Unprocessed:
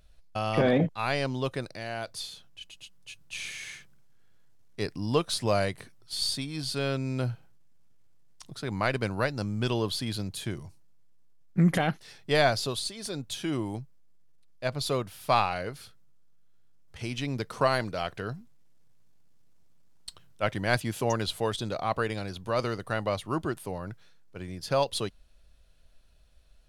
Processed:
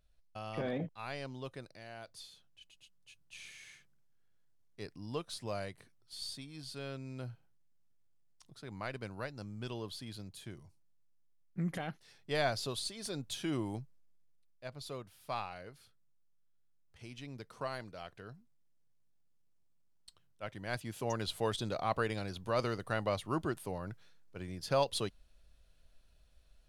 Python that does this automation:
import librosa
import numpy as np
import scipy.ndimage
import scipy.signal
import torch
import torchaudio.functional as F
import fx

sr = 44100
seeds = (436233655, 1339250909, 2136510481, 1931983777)

y = fx.gain(x, sr, db=fx.line((11.9, -13.5), (12.95, -5.0), (13.79, -5.0), (14.65, -15.0), (20.49, -15.0), (21.48, -4.5)))